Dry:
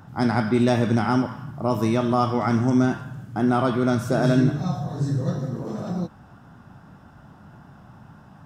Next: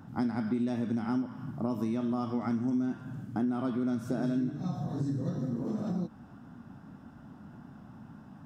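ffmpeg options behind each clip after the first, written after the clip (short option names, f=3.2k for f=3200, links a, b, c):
-af "equalizer=f=250:t=o:w=0.87:g=11,acompressor=threshold=-22dB:ratio=5,volume=-7dB"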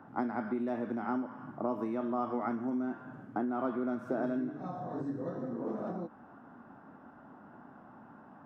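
-filter_complex "[0:a]acrossover=split=320 2000:gain=0.112 1 0.0794[a][b][c];[a][b][c]amix=inputs=3:normalize=0,volume=4.5dB"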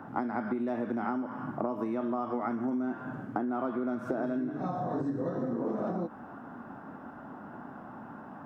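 -af "acompressor=threshold=-37dB:ratio=6,volume=8.5dB"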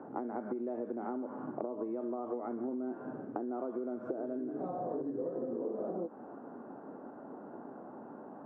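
-af "bandpass=f=440:t=q:w=2.2:csg=0,acompressor=threshold=-39dB:ratio=6,volume=5.5dB"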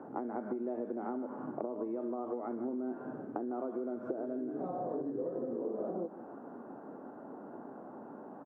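-af "aecho=1:1:154:0.168"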